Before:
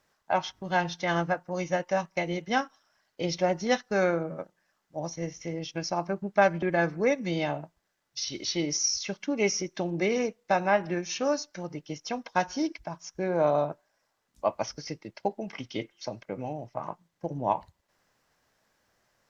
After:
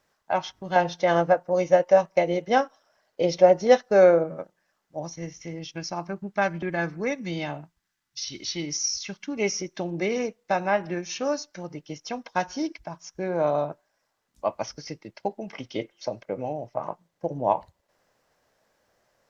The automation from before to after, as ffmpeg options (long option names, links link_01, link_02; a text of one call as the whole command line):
ffmpeg -i in.wav -af "asetnsamples=nb_out_samples=441:pad=0,asendcmd='0.76 equalizer g 11.5;4.24 equalizer g 2.5;5.03 equalizer g -4.5;7.63 equalizer g -15;8.22 equalizer g -8.5;9.37 equalizer g 0.5;15.52 equalizer g 7',equalizer=frequency=550:width_type=o:width=1.1:gain=2" out.wav